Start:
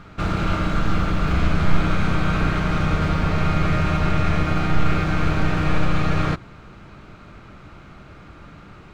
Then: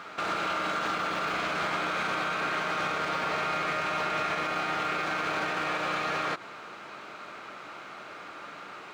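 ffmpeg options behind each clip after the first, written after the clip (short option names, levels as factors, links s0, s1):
-af "highpass=530,alimiter=level_in=1.41:limit=0.0631:level=0:latency=1:release=85,volume=0.708,volume=1.88"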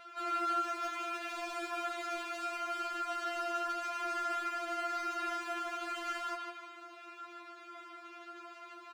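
-filter_complex "[0:a]aecho=1:1:153|306|459|612|765:0.631|0.259|0.106|0.0435|0.0178,acrossover=split=110|1400|6300[s0][s1][s2][s3];[s2]aeval=exprs='0.0299*(abs(mod(val(0)/0.0299+3,4)-2)-1)':c=same[s4];[s0][s1][s4][s3]amix=inputs=4:normalize=0,afftfilt=real='re*4*eq(mod(b,16),0)':imag='im*4*eq(mod(b,16),0)':win_size=2048:overlap=0.75,volume=0.447"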